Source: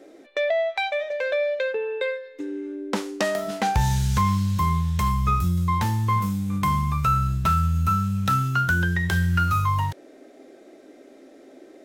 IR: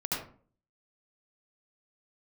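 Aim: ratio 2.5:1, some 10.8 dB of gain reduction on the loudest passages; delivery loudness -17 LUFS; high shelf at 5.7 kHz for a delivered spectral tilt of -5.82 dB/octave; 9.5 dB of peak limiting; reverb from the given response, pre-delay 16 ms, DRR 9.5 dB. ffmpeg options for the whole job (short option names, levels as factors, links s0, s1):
-filter_complex "[0:a]highshelf=f=5700:g=3,acompressor=threshold=0.0224:ratio=2.5,alimiter=level_in=1.19:limit=0.0631:level=0:latency=1,volume=0.841,asplit=2[s0][s1];[1:a]atrim=start_sample=2205,adelay=16[s2];[s1][s2]afir=irnorm=-1:irlink=0,volume=0.178[s3];[s0][s3]amix=inputs=2:normalize=0,volume=6.68"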